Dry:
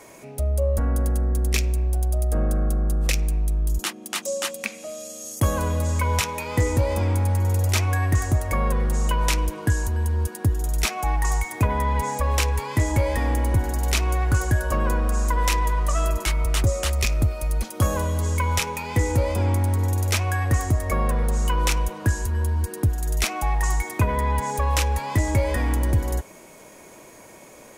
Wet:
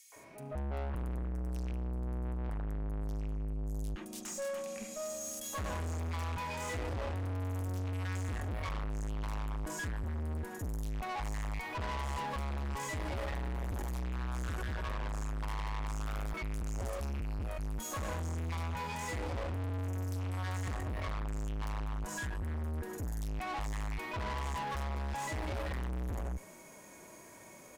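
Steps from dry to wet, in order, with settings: harmonic-percussive split percussive -18 dB; three bands offset in time highs, mids, lows 120/160 ms, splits 490/3000 Hz; valve stage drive 35 dB, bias 0.5

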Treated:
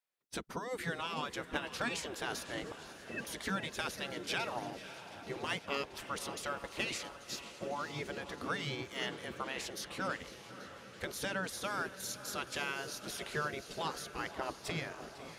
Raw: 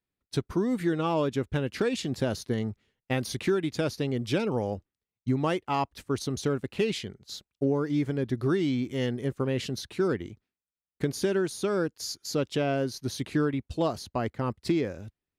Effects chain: 2.63–3.27 s: formants replaced by sine waves; shuffle delay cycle 833 ms, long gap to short 1.5:1, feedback 71%, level -21 dB; spectral gate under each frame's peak -10 dB weak; echo that smears into a reverb 595 ms, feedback 54%, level -14.5 dB

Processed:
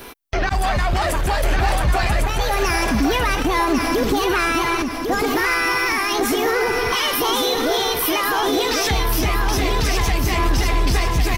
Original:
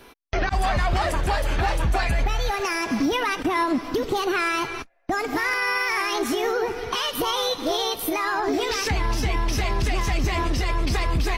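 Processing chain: treble shelf 11 kHz +11 dB; waveshaping leveller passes 1; peak limiter -22 dBFS, peak gain reduction 10 dB; feedback delay 1100 ms, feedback 38%, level -5 dB; trim +8 dB

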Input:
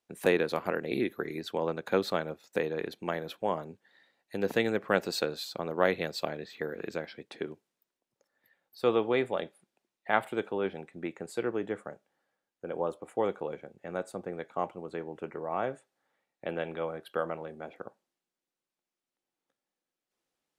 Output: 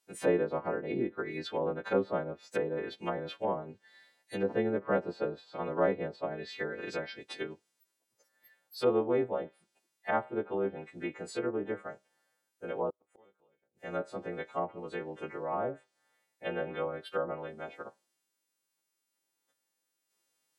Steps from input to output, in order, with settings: partials quantised in pitch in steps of 2 st; 12.90–13.81 s: inverted gate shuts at -37 dBFS, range -34 dB; low-pass that closes with the level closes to 880 Hz, closed at -28 dBFS

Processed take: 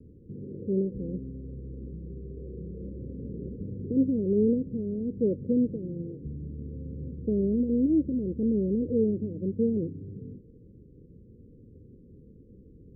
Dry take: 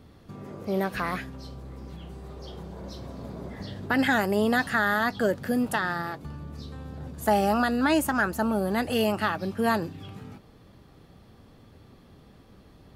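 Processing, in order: steep low-pass 510 Hz 96 dB/octave; trim +1.5 dB

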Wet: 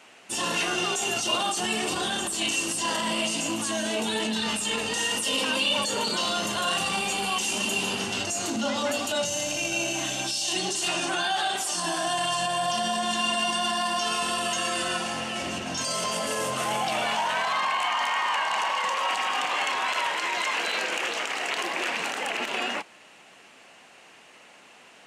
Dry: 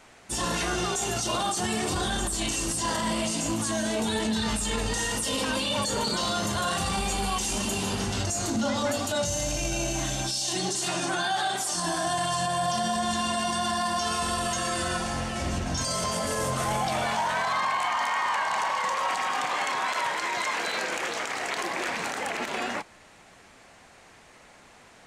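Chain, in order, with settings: high-pass 210 Hz 12 dB/octave; peaking EQ 2.8 kHz +9.5 dB 0.34 oct

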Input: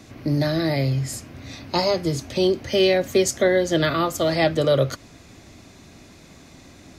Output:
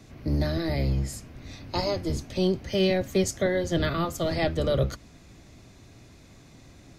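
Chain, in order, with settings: octave divider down 1 oct, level +2 dB; trim -7 dB

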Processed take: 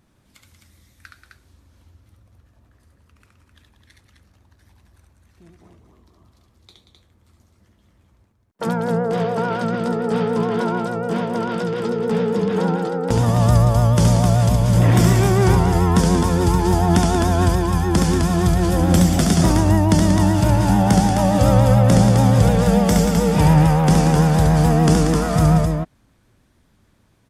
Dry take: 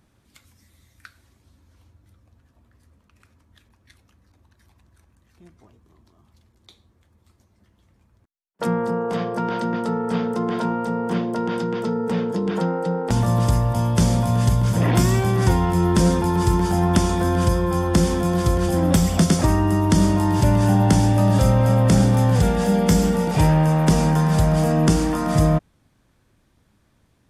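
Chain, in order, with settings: multi-tap echo 70/184/259 ms -3.5/-9.5/-5.5 dB; vibrato 6.9 Hz 69 cents

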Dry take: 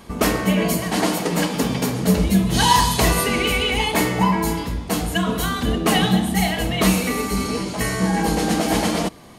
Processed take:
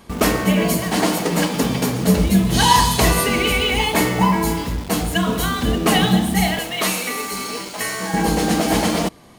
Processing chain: 6.59–8.14 s: high-pass 790 Hz 6 dB/octave; in parallel at -4 dB: bit crusher 5-bit; on the sum: trim -2.5 dB

